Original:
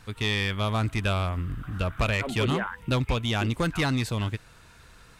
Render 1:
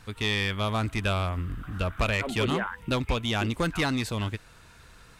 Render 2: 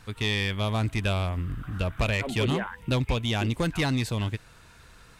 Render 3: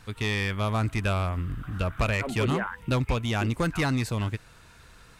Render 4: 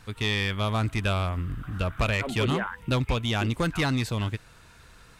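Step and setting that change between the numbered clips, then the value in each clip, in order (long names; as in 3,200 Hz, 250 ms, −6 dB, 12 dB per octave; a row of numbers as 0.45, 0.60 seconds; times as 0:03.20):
dynamic equaliser, frequency: 130, 1,300, 3,400, 9,300 Hertz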